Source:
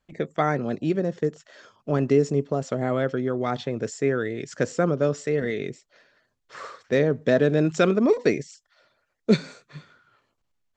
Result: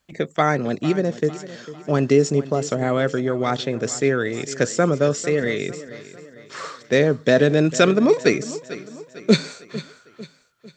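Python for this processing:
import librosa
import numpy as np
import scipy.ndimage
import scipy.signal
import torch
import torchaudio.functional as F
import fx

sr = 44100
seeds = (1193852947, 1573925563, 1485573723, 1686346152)

p1 = scipy.signal.sosfilt(scipy.signal.butter(2, 43.0, 'highpass', fs=sr, output='sos'), x)
p2 = fx.high_shelf(p1, sr, hz=2700.0, db=9.0)
p3 = p2 + fx.echo_feedback(p2, sr, ms=450, feedback_pct=46, wet_db=-16.0, dry=0)
y = F.gain(torch.from_numpy(p3), 3.5).numpy()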